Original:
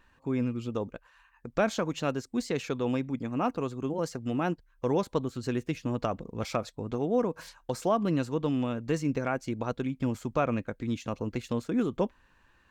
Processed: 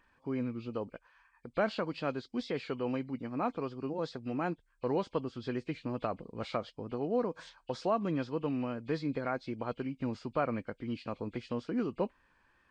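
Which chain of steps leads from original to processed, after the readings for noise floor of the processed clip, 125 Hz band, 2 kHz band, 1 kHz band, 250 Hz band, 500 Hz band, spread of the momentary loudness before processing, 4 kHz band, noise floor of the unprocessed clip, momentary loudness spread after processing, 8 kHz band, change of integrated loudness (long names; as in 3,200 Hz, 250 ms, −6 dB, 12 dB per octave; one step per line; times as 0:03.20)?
−71 dBFS, −7.0 dB, −4.0 dB, −3.5 dB, −5.5 dB, −4.0 dB, 6 LU, −4.5 dB, −65 dBFS, 7 LU, below −15 dB, −5.0 dB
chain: hearing-aid frequency compression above 2,100 Hz 1.5 to 1
low-shelf EQ 150 Hz −7 dB
tape wow and flutter 27 cents
level −3.5 dB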